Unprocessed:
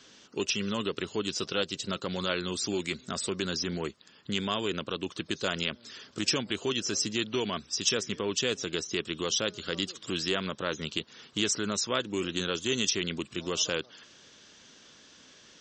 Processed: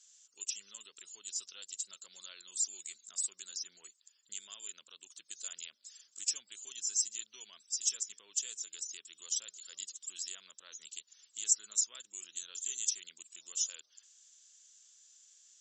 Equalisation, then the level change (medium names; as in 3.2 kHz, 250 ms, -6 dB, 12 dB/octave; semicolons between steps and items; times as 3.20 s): band-pass filter 7.3 kHz, Q 9.2; +8.5 dB